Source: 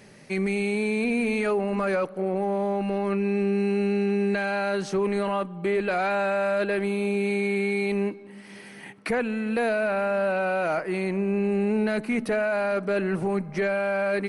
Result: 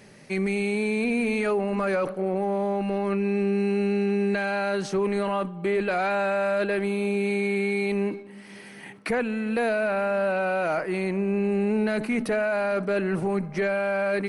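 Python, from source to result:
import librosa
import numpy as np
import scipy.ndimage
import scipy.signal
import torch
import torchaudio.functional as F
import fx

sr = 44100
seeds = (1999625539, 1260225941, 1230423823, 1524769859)

y = fx.sustainer(x, sr, db_per_s=120.0)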